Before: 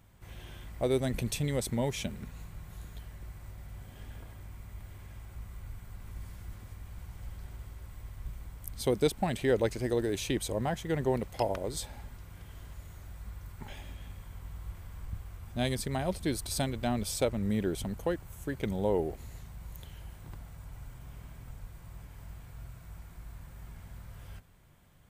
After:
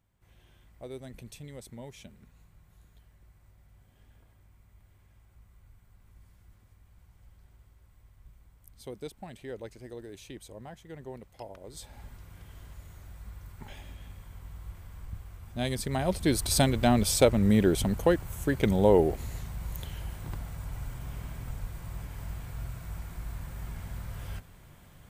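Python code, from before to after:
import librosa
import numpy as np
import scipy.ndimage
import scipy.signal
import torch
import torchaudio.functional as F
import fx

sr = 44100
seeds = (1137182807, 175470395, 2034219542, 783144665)

y = fx.gain(x, sr, db=fx.line((11.56, -13.5), (12.05, -1.0), (15.58, -1.0), (16.51, 8.0)))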